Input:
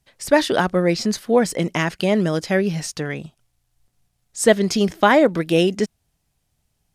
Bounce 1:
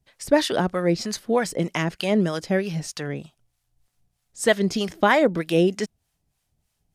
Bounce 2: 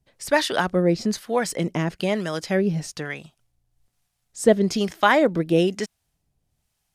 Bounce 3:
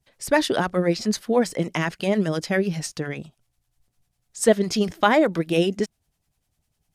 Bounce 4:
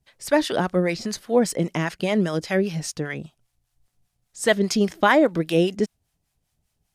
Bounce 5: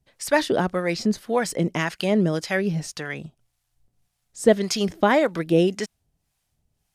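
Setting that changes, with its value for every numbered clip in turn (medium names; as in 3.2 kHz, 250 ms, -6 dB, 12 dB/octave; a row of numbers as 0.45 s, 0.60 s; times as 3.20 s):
harmonic tremolo, rate: 3.2 Hz, 1.1 Hz, 10 Hz, 5 Hz, 1.8 Hz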